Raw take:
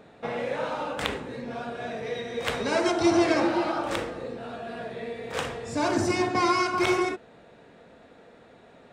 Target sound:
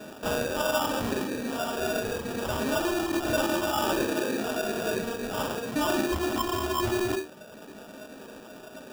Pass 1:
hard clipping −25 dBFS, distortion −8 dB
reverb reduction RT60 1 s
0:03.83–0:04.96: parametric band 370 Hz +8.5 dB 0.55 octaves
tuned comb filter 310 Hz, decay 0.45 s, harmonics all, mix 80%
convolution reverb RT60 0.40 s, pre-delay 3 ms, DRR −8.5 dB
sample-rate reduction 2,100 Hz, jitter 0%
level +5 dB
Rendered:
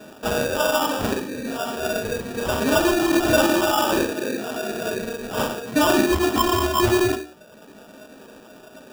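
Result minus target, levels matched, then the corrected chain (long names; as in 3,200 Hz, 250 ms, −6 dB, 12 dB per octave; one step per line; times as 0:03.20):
hard clipping: distortion −6 dB
hard clipping −35 dBFS, distortion −2 dB
reverb reduction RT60 1 s
0:03.83–0:04.96: parametric band 370 Hz +8.5 dB 0.55 octaves
tuned comb filter 310 Hz, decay 0.45 s, harmonics all, mix 80%
convolution reverb RT60 0.40 s, pre-delay 3 ms, DRR −8.5 dB
sample-rate reduction 2,100 Hz, jitter 0%
level +5 dB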